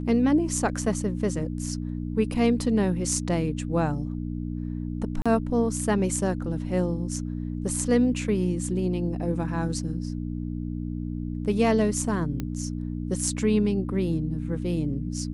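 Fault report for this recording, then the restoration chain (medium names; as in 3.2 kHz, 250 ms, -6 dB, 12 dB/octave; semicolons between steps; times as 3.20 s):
hum 60 Hz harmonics 5 -31 dBFS
5.22–5.26 s: dropout 36 ms
12.40 s: pop -17 dBFS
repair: de-click; de-hum 60 Hz, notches 5; interpolate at 5.22 s, 36 ms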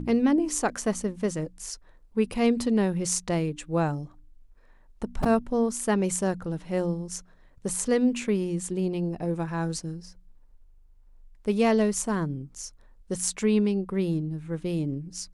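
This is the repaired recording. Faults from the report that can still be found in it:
12.40 s: pop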